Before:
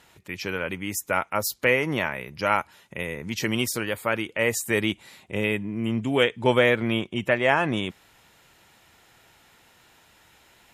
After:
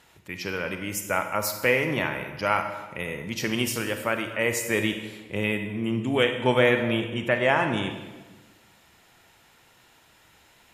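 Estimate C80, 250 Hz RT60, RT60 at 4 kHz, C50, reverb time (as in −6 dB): 9.0 dB, 1.4 s, 1.0 s, 7.0 dB, 1.3 s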